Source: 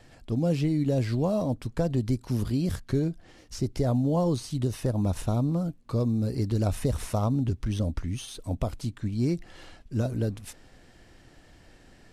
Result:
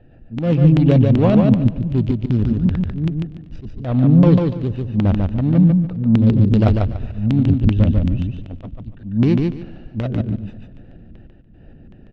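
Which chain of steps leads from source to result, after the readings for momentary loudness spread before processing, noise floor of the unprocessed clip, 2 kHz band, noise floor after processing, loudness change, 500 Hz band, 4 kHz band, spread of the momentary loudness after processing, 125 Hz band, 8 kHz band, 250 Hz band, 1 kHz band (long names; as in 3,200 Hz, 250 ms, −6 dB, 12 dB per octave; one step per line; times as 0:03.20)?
8 LU, −55 dBFS, +8.5 dB, −45 dBFS, +12.0 dB, +7.0 dB, can't be measured, 18 LU, +12.0 dB, below −10 dB, +12.5 dB, +6.0 dB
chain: adaptive Wiener filter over 41 samples
auto-filter low-pass square 2.6 Hz 210–3,000 Hz
automatic gain control gain up to 5 dB
Butterworth low-pass 8,500 Hz 96 dB per octave
in parallel at −11 dB: soft clipping −19 dBFS, distortion −11 dB
on the sum: volume swells 242 ms
on a send: repeating echo 145 ms, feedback 22%, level −3.5 dB
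on the sum: feedback echo with a swinging delay time 121 ms, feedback 70%, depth 78 cents, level −23.5 dB
level +4.5 dB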